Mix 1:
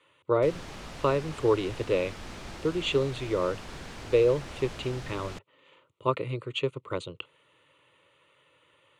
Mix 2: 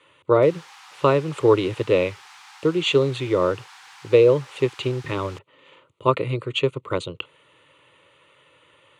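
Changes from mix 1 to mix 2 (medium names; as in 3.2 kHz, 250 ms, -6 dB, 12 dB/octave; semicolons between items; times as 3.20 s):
speech +7.5 dB; background: add brick-wall FIR high-pass 730 Hz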